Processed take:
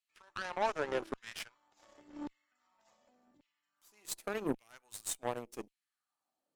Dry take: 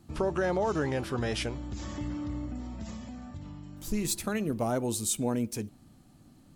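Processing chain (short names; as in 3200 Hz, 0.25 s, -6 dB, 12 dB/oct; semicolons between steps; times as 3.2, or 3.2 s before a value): LFO high-pass saw down 0.88 Hz 280–2600 Hz; added harmonics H 3 -21 dB, 4 -22 dB, 7 -21 dB, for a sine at -15 dBFS; gain -5 dB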